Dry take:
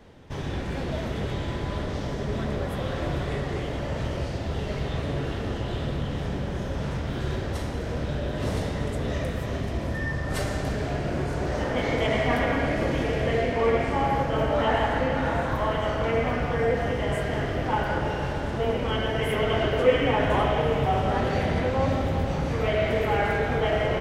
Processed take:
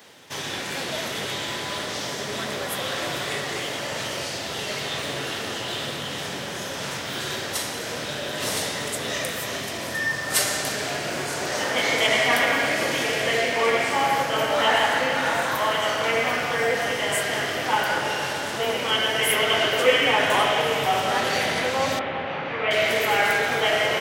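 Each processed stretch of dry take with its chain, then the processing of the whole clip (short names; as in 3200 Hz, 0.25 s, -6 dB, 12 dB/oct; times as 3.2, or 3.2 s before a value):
21.99–22.71 LPF 2800 Hz 24 dB/oct + low shelf 220 Hz -5.5 dB
whole clip: HPF 92 Hz 24 dB/oct; tilt +4.5 dB/oct; gain +4.5 dB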